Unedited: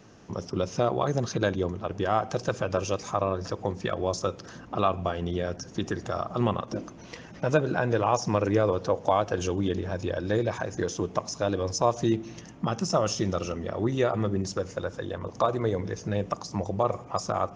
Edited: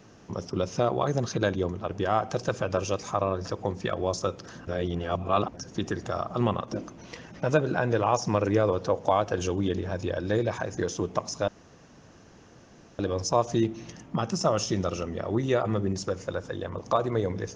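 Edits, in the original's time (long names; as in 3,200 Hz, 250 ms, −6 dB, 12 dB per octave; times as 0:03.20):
0:04.67–0:05.54: reverse
0:11.48: splice in room tone 1.51 s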